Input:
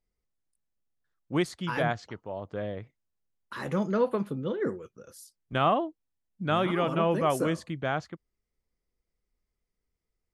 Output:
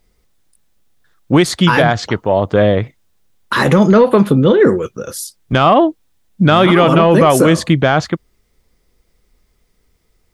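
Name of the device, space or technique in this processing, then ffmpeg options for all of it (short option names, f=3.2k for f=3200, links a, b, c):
mastering chain: -af "equalizer=f=3.6k:t=o:w=0.28:g=3.5,acompressor=threshold=-27dB:ratio=2.5,asoftclip=type=tanh:threshold=-18dB,alimiter=level_in=24.5dB:limit=-1dB:release=50:level=0:latency=1,volume=-1dB"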